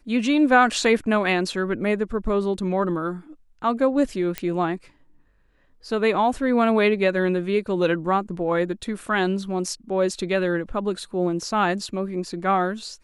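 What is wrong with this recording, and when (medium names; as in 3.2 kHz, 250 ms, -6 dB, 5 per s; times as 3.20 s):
4.38 s: pop -10 dBFS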